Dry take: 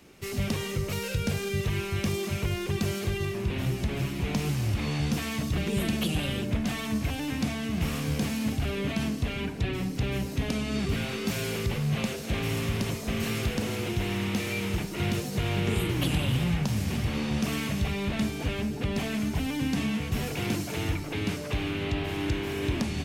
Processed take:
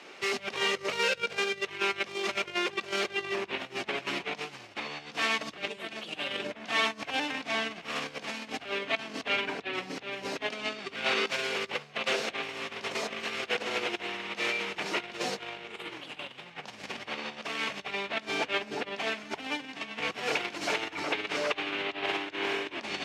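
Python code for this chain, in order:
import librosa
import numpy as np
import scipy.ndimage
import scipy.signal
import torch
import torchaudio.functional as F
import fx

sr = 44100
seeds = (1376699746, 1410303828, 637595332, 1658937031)

y = fx.over_compress(x, sr, threshold_db=-33.0, ratio=-0.5)
y = fx.bandpass_edges(y, sr, low_hz=580.0, high_hz=4300.0)
y = y * librosa.db_to_amplitude(6.5)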